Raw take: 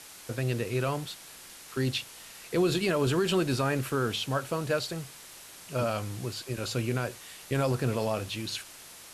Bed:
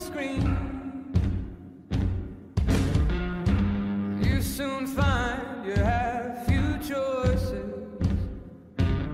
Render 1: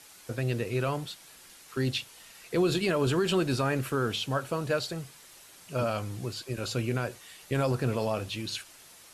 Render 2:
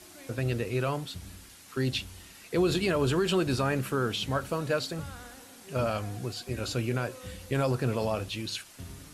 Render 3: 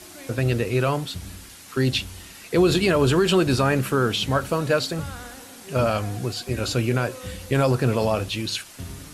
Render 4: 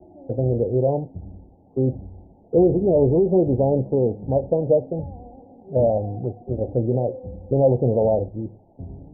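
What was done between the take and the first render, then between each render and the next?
noise reduction 6 dB, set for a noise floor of -49 dBFS
add bed -19.5 dB
trim +7.5 dB
steep low-pass 850 Hz 96 dB/octave; dynamic bell 520 Hz, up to +7 dB, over -37 dBFS, Q 2.6

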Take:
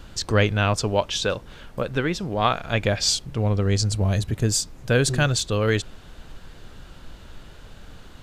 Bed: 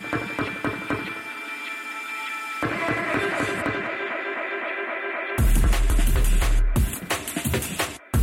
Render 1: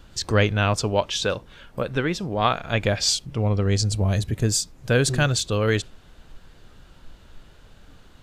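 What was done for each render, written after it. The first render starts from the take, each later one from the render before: noise print and reduce 6 dB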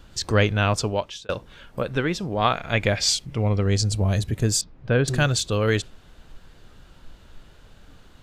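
0.82–1.29 s: fade out; 2.54–3.62 s: peaking EQ 2.1 kHz +6 dB 0.34 oct; 4.61–5.08 s: distance through air 320 m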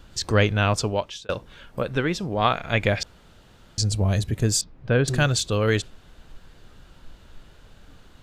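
3.03–3.78 s: room tone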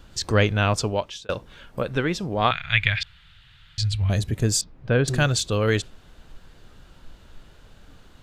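2.51–4.10 s: FFT filter 140 Hz 0 dB, 220 Hz -18 dB, 540 Hz -21 dB, 1.8 kHz +5 dB, 3.6 kHz +7 dB, 5.9 kHz -9 dB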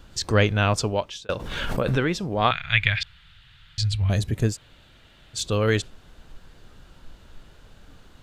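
1.36–2.19 s: swell ahead of each attack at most 31 dB/s; 4.52–5.38 s: room tone, crossfade 0.10 s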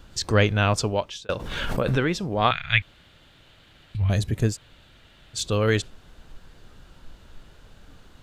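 2.82–3.95 s: room tone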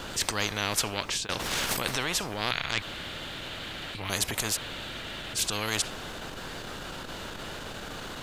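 transient shaper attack -7 dB, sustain 0 dB; spectrum-flattening compressor 4:1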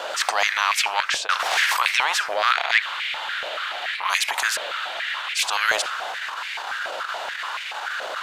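overdrive pedal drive 13 dB, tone 3.7 kHz, clips at -7 dBFS; step-sequenced high-pass 7 Hz 600–2200 Hz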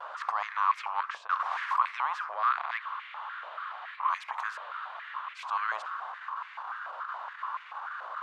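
vibrato 0.88 Hz 38 cents; band-pass filter 1.1 kHz, Q 5.8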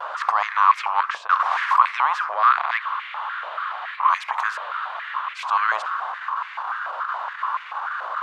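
trim +10.5 dB

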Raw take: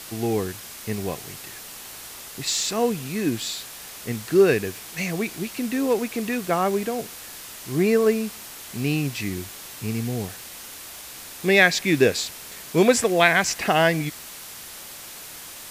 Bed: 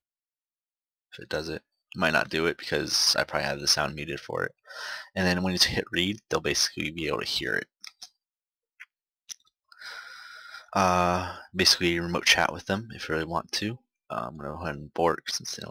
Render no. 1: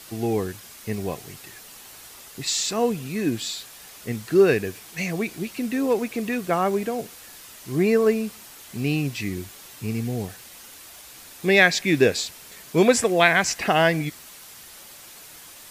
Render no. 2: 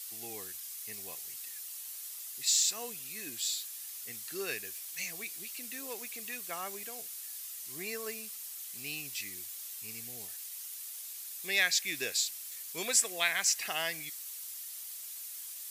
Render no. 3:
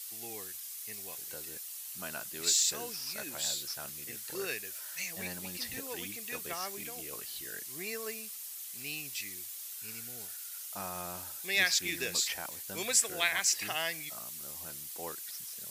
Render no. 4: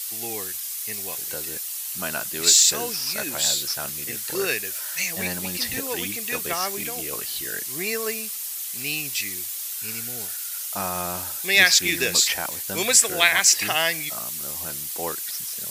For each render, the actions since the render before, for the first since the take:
noise reduction 6 dB, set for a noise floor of -40 dBFS
pre-emphasis filter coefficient 0.97; band-stop 1.5 kHz, Q 26
add bed -19 dB
trim +12 dB; peak limiter -2 dBFS, peak gain reduction 2.5 dB

